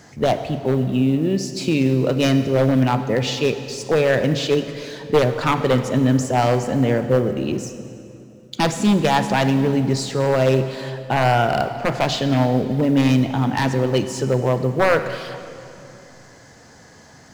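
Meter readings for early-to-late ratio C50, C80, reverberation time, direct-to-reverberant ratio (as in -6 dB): 9.5 dB, 10.5 dB, 2.7 s, 9.0 dB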